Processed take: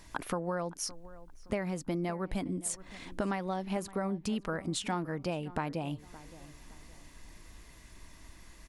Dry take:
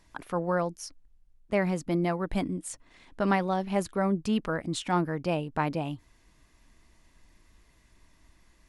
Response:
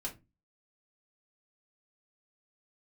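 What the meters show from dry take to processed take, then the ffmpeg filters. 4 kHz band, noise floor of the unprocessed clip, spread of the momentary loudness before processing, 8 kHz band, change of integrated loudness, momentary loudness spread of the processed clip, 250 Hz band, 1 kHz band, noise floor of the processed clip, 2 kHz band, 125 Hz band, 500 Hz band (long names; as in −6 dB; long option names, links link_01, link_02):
−1.5 dB, −63 dBFS, 10 LU, +2.5 dB, −6.0 dB, 20 LU, −5.5 dB, −6.5 dB, −55 dBFS, −6.0 dB, −5.5 dB, −6.0 dB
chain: -filter_complex "[0:a]highshelf=frequency=5700:gain=4.5,acompressor=threshold=-39dB:ratio=6,asplit=2[link_01][link_02];[link_02]adelay=567,lowpass=frequency=2000:poles=1,volume=-17.5dB,asplit=2[link_03][link_04];[link_04]adelay=567,lowpass=frequency=2000:poles=1,volume=0.37,asplit=2[link_05][link_06];[link_06]adelay=567,lowpass=frequency=2000:poles=1,volume=0.37[link_07];[link_01][link_03][link_05][link_07]amix=inputs=4:normalize=0,volume=7.5dB"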